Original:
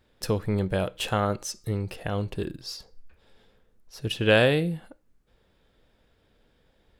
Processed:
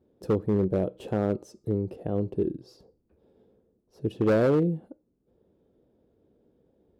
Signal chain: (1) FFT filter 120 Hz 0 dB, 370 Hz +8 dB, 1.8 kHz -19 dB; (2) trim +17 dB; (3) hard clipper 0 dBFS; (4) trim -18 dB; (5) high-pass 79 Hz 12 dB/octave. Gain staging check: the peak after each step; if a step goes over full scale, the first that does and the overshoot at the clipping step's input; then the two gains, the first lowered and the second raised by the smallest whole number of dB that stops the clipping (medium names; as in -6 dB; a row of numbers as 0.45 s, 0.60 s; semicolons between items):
-8.0 dBFS, +9.0 dBFS, 0.0 dBFS, -18.0 dBFS, -13.5 dBFS; step 2, 9.0 dB; step 2 +8 dB, step 4 -9 dB